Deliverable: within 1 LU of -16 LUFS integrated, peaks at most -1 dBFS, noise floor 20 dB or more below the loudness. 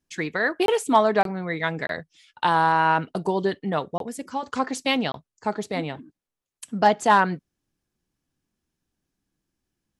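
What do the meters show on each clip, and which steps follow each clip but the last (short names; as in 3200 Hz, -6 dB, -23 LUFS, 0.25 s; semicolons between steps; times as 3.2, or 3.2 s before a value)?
dropouts 5; longest dropout 22 ms; loudness -23.5 LUFS; peak -6.5 dBFS; loudness target -16.0 LUFS
-> interpolate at 0.66/1.23/1.87/3.98/5.12, 22 ms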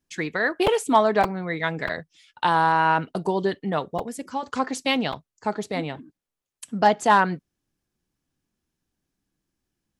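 dropouts 0; loudness -23.5 LUFS; peak -6.5 dBFS; loudness target -16.0 LUFS
-> gain +7.5 dB; limiter -1 dBFS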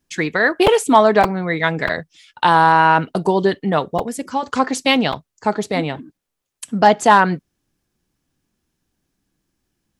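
loudness -16.5 LUFS; peak -1.0 dBFS; noise floor -79 dBFS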